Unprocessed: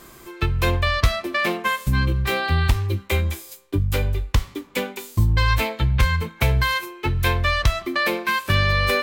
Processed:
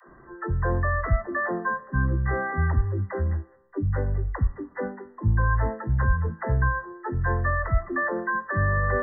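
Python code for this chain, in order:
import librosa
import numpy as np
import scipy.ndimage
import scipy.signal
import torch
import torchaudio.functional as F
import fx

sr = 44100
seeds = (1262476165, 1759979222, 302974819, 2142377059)

y = fx.brickwall_lowpass(x, sr, high_hz=2000.0)
y = fx.dispersion(y, sr, late='lows', ms=83.0, hz=310.0)
y = y * 10.0 ** (-3.5 / 20.0)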